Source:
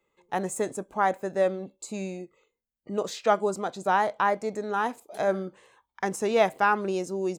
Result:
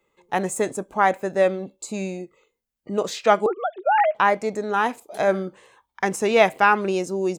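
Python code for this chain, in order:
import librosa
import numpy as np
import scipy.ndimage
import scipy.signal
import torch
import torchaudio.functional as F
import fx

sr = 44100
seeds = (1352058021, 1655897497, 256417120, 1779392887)

y = fx.sine_speech(x, sr, at=(3.46, 4.15))
y = fx.dynamic_eq(y, sr, hz=2400.0, q=1.8, threshold_db=-45.0, ratio=4.0, max_db=6)
y = F.gain(torch.from_numpy(y), 5.0).numpy()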